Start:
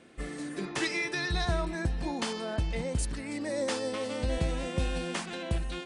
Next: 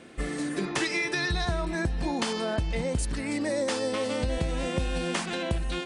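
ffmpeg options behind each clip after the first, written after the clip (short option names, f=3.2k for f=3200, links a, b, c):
-af "acompressor=threshold=-32dB:ratio=4,volume=7dB"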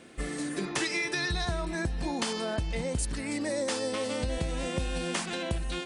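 -af "highshelf=f=5.4k:g=6,volume=-3dB"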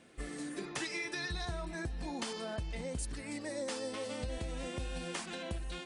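-af "flanger=delay=1:depth=3.5:regen=-59:speed=1.2:shape=triangular,volume=-4dB"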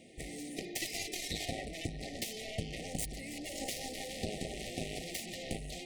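-af "bandreject=f=147.3:t=h:w=4,bandreject=f=294.6:t=h:w=4,bandreject=f=441.9:t=h:w=4,bandreject=f=589.2:t=h:w=4,bandreject=f=736.5:t=h:w=4,bandreject=f=883.8:t=h:w=4,bandreject=f=1.0311k:t=h:w=4,bandreject=f=1.1784k:t=h:w=4,bandreject=f=1.3257k:t=h:w=4,bandreject=f=1.473k:t=h:w=4,bandreject=f=1.6203k:t=h:w=4,bandreject=f=1.7676k:t=h:w=4,bandreject=f=1.9149k:t=h:w=4,bandreject=f=2.0622k:t=h:w=4,bandreject=f=2.2095k:t=h:w=4,bandreject=f=2.3568k:t=h:w=4,bandreject=f=2.5041k:t=h:w=4,bandreject=f=2.6514k:t=h:w=4,bandreject=f=2.7987k:t=h:w=4,bandreject=f=2.946k:t=h:w=4,bandreject=f=3.0933k:t=h:w=4,bandreject=f=3.2406k:t=h:w=4,bandreject=f=3.3879k:t=h:w=4,bandreject=f=3.5352k:t=h:w=4,bandreject=f=3.6825k:t=h:w=4,bandreject=f=3.8298k:t=h:w=4,bandreject=f=3.9771k:t=h:w=4,bandreject=f=4.1244k:t=h:w=4,bandreject=f=4.2717k:t=h:w=4,bandreject=f=4.419k:t=h:w=4,aeval=exprs='0.0562*(cos(1*acos(clip(val(0)/0.0562,-1,1)))-cos(1*PI/2))+0.02*(cos(7*acos(clip(val(0)/0.0562,-1,1)))-cos(7*PI/2))':c=same,afftfilt=real='re*(1-between(b*sr/4096,800,1800))':imag='im*(1-between(b*sr/4096,800,1800))':win_size=4096:overlap=0.75,volume=1dB"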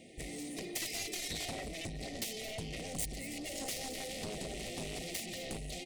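-filter_complex "[0:a]acrossover=split=4600[a][b];[a]asoftclip=type=tanh:threshold=-36.5dB[c];[b]aecho=1:1:220:0.224[d];[c][d]amix=inputs=2:normalize=0,volume=1.5dB"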